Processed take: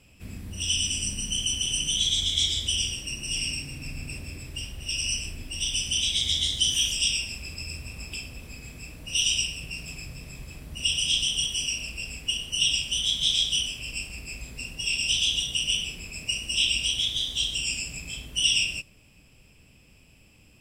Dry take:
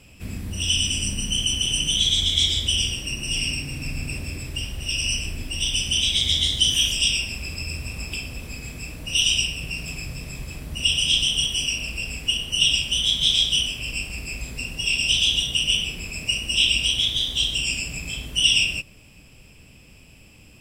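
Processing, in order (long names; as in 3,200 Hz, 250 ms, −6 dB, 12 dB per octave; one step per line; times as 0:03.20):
dynamic equaliser 6,700 Hz, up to +6 dB, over −37 dBFS, Q 0.76
level −7 dB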